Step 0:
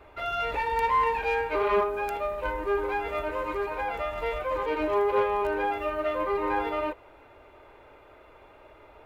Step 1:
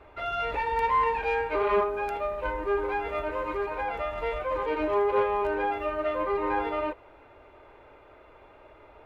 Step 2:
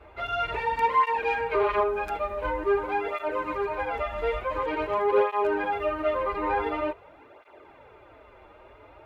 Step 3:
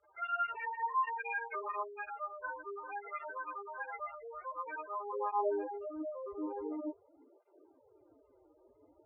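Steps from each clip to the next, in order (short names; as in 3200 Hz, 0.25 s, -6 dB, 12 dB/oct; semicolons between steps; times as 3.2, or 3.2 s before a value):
LPF 3900 Hz 6 dB/oct
tape flanging out of phase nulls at 0.47 Hz, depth 7.8 ms; gain +4.5 dB
spectral gate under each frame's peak -10 dB strong; band-pass sweep 1600 Hz -> 270 Hz, 5.06–5.81; gain -2 dB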